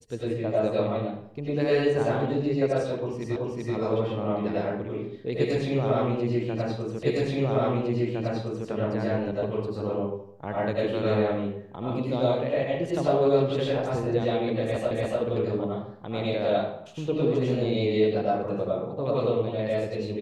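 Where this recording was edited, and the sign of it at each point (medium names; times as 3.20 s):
3.36 s: repeat of the last 0.38 s
7.03 s: repeat of the last 1.66 s
14.91 s: repeat of the last 0.29 s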